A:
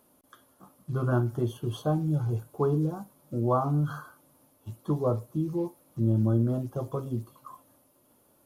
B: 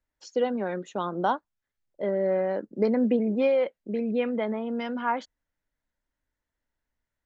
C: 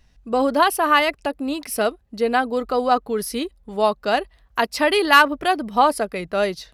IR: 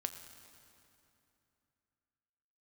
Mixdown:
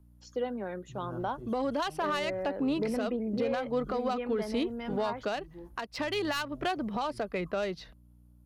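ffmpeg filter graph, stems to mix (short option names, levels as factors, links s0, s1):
-filter_complex "[0:a]aeval=exprs='val(0)+0.01*(sin(2*PI*60*n/s)+sin(2*PI*2*60*n/s)/2+sin(2*PI*3*60*n/s)/3+sin(2*PI*4*60*n/s)/4+sin(2*PI*5*60*n/s)/5)':c=same,volume=0.15[s0];[1:a]volume=0.447[s1];[2:a]adynamicsmooth=sensitivity=1:basefreq=3000,adelay=1200,volume=0.891[s2];[s0][s2]amix=inputs=2:normalize=0,acrossover=split=130|3000[s3][s4][s5];[s4]acompressor=threshold=0.0794:ratio=6[s6];[s3][s6][s5]amix=inputs=3:normalize=0,alimiter=limit=0.158:level=0:latency=1:release=375,volume=1[s7];[s1][s7]amix=inputs=2:normalize=0,asoftclip=type=tanh:threshold=0.188,alimiter=limit=0.0794:level=0:latency=1:release=238"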